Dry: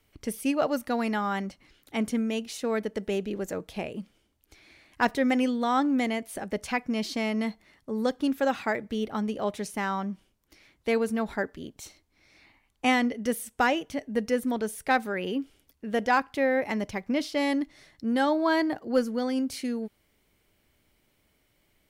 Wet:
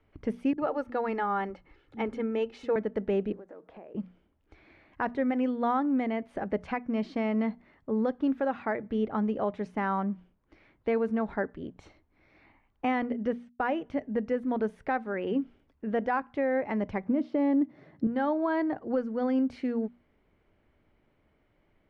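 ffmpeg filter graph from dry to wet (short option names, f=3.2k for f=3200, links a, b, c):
-filter_complex "[0:a]asettb=1/sr,asplit=3[a][b][c];[a]atrim=end=0.534[d];[b]atrim=start=0.53:end=2.76,asetpts=PTS-STARTPTS,afade=t=in:d=0.004:c=qsin,afade=t=out:st=2.226:d=0.004:c=qsin,aecho=1:1:2.3:0.44,atrim=end_sample=98343,acrossover=split=210[e][f];[f]adelay=50[g];[e][g]amix=inputs=2:normalize=0,atrim=end_sample=98343[h];[c]atrim=start=2.756[i];[d][h]acrossfade=d=0.004:c1=hsin:c2=qsin[j];[j][i]acrossfade=d=0.004:c1=qsin:c2=hsin,asettb=1/sr,asplit=3[k][l][m];[k]atrim=end=3.324[n];[l]atrim=start=3.32:end=3.95,asetpts=PTS-STARTPTS,afade=t=in:d=0.004:c=qsin,afade=t=out:st=0.626:d=0.004:c=qsin,acrossover=split=250 2000:gain=0.126 1 0.158[o][p][q];[o][p][q]amix=inputs=3:normalize=0,acompressor=threshold=-46dB:ratio=6:attack=3.2:release=140:knee=1:detection=peak,acrusher=bits=6:mode=log:mix=0:aa=0.000001[r];[m]atrim=start=3.946[s];[n][r]acrossfade=d=0.004:c1=hsin:c2=qsin[t];[t][s]acrossfade=d=0.004:c1=qsin:c2=hsin,asettb=1/sr,asplit=3[u][v][w];[u]atrim=end=13.024[x];[v]atrim=start=13.02:end=13.71,asetpts=PTS-STARTPTS,afade=t=in:d=0.004:c=qsin,afade=t=out:st=0.686:d=0.004:c=qsin,agate=range=-33dB:threshold=-36dB:ratio=3:release=100:detection=peak,lowpass=5.2k,bandreject=f=2k:w=25[y];[w]atrim=start=13.706[z];[x][y]acrossfade=d=0.004:c1=hsin:c2=qsin[aa];[aa][z]acrossfade=d=0.004:c1=qsin:c2=hsin,asettb=1/sr,asplit=3[ab][ac][ad];[ab]atrim=end=17.054[ae];[ac]atrim=start=17.05:end=18.07,asetpts=PTS-STARTPTS,afade=t=in:d=0.004:c=qsin,afade=t=out:st=1.016:d=0.004:c=qsin,tiltshelf=f=730:g=7.5,acontrast=37,highpass=f=120:w=0.5412,highpass=f=120:w=1.3066[af];[ad]atrim=start=18.066[ag];[ae][af]acrossfade=d=0.004:c1=hsin:c2=qsin[ah];[ah][ag]acrossfade=d=0.004:c1=qsin:c2=hsin,lowpass=1.6k,bandreject=f=60:t=h:w=6,bandreject=f=120:t=h:w=6,bandreject=f=180:t=h:w=6,bandreject=f=240:t=h:w=6,alimiter=limit=-21.5dB:level=0:latency=1:release=410,volume=2.5dB"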